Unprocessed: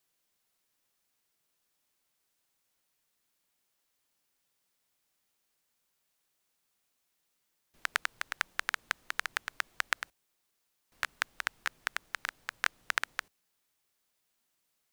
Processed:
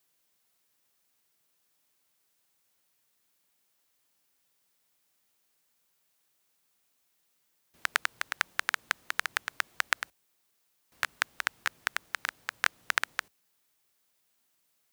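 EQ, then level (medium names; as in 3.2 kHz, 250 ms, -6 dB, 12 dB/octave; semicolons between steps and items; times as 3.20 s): high-pass 59 Hz; treble shelf 12 kHz +4 dB; +3.0 dB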